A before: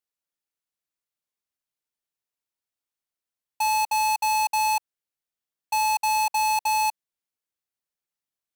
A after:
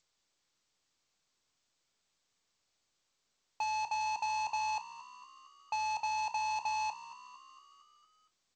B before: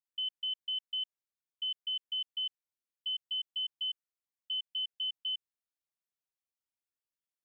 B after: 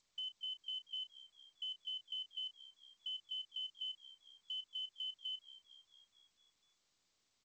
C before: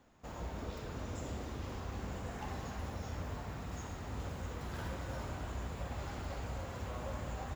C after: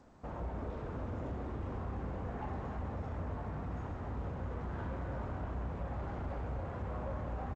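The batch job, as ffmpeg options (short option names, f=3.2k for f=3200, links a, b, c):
-filter_complex "[0:a]lowpass=1.4k,aresample=16000,asoftclip=type=tanh:threshold=-34dB,aresample=44100,asplit=2[a][b];[b]adelay=33,volume=-14dB[c];[a][c]amix=inputs=2:normalize=0,asplit=2[d][e];[e]acompressor=threshold=-48dB:ratio=6,volume=0.5dB[f];[d][f]amix=inputs=2:normalize=0,crystalizer=i=0.5:c=0,asplit=7[g][h][i][j][k][l][m];[h]adelay=229,afreqshift=66,volume=-16.5dB[n];[i]adelay=458,afreqshift=132,volume=-20.7dB[o];[j]adelay=687,afreqshift=198,volume=-24.8dB[p];[k]adelay=916,afreqshift=264,volume=-29dB[q];[l]adelay=1145,afreqshift=330,volume=-33.1dB[r];[m]adelay=1374,afreqshift=396,volume=-37.3dB[s];[g][n][o][p][q][r][s]amix=inputs=7:normalize=0" -ar 16000 -c:a g722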